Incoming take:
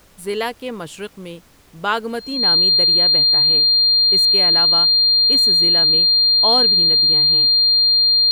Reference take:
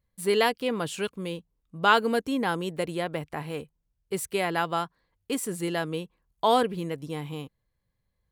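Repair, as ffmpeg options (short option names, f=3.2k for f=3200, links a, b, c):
-af "bandreject=f=4.2k:w=30,agate=range=-21dB:threshold=-31dB"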